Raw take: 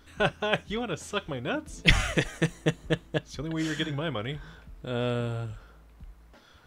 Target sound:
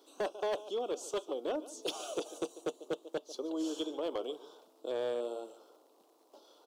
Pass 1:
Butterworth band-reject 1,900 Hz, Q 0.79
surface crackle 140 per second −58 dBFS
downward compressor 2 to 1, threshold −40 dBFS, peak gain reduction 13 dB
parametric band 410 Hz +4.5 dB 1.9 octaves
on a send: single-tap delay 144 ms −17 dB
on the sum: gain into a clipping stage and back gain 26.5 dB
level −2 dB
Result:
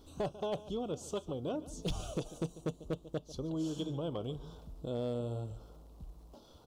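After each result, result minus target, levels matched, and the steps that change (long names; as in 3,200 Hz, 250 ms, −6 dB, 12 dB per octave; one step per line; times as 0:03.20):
downward compressor: peak gain reduction +4 dB; 250 Hz band +3.0 dB
change: downward compressor 2 to 1, threshold −32 dBFS, peak gain reduction 9 dB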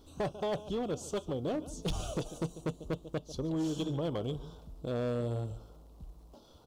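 250 Hz band +3.0 dB
add after downward compressor: Butterworth high-pass 320 Hz 36 dB per octave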